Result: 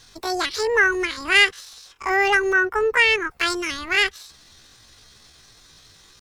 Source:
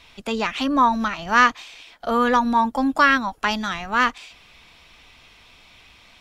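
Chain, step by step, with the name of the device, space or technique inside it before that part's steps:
chipmunk voice (pitch shifter +8.5 semitones)
0:02.53–0:03.31: bass and treble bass +1 dB, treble −7 dB

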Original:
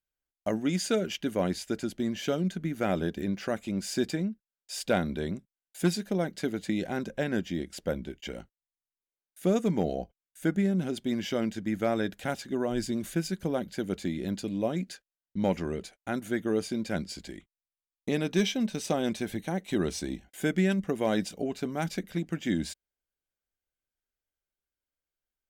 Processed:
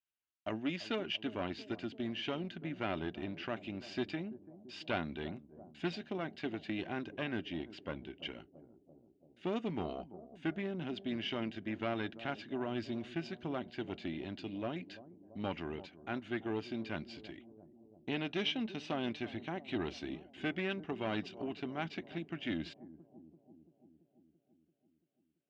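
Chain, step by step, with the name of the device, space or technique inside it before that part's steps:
analogue delay pedal into a guitar amplifier (bucket-brigade delay 337 ms, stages 2,048, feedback 65%, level −16.5 dB; tube saturation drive 20 dB, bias 0.45; loudspeaker in its box 96–4,000 Hz, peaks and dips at 190 Hz −10 dB, 500 Hz −10 dB, 2,800 Hz +8 dB)
level −3.5 dB

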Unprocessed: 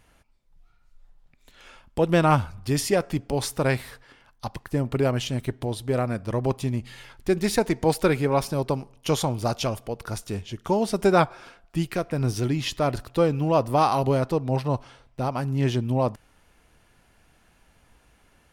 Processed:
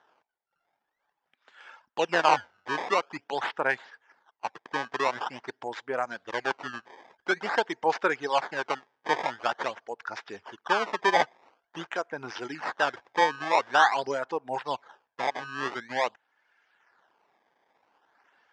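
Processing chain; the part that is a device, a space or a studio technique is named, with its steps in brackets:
reverb reduction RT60 1.1 s
circuit-bent sampling toy (sample-and-hold swept by an LFO 18×, swing 160% 0.47 Hz; loudspeaker in its box 560–5,000 Hz, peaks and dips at 590 Hz −3 dB, 870 Hz +5 dB, 1,600 Hz +7 dB, 2,500 Hz −3 dB, 4,100 Hz −7 dB)

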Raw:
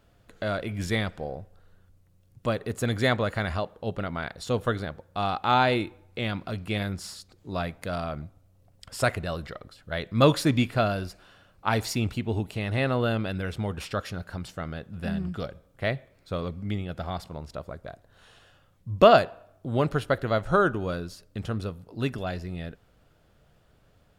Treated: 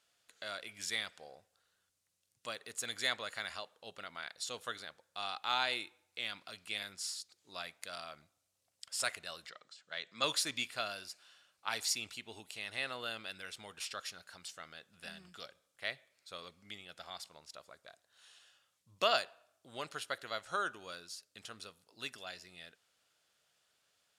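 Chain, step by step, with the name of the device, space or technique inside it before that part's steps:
piezo pickup straight into a mixer (low-pass filter 8,100 Hz 12 dB per octave; first difference)
0:09.49–0:10.24: elliptic band-pass filter 140–7,600 Hz
level +3.5 dB

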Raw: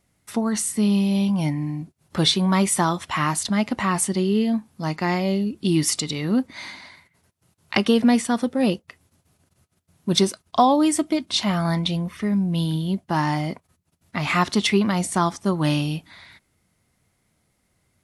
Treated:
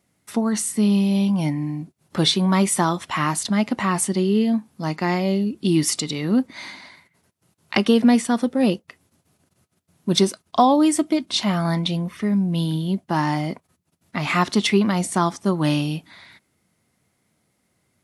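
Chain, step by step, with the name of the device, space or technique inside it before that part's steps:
filter by subtraction (in parallel: low-pass filter 220 Hz 12 dB per octave + polarity inversion)

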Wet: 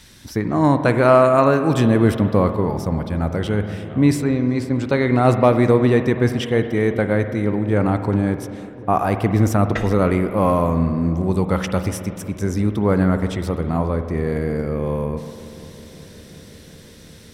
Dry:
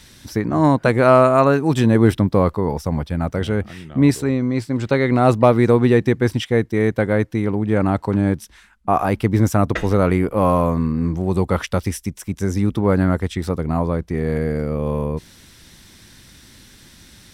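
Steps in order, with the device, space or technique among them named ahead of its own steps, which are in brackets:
dub delay into a spring reverb (feedback echo with a low-pass in the loop 367 ms, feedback 84%, low-pass 1,600 Hz, level −21 dB; spring reverb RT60 1.9 s, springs 48 ms, chirp 70 ms, DRR 8.5 dB)
level −1 dB

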